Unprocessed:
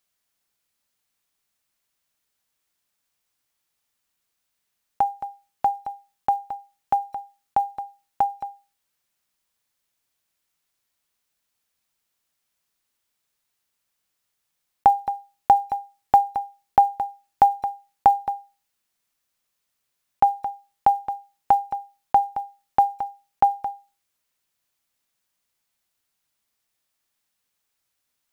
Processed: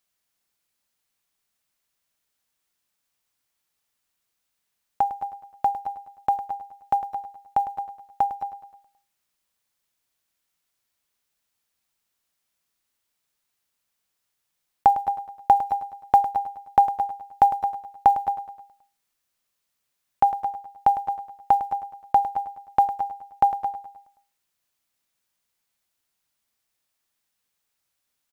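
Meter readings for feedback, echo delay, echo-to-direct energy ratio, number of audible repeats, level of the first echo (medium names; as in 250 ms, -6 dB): 51%, 105 ms, -11.0 dB, 4, -12.5 dB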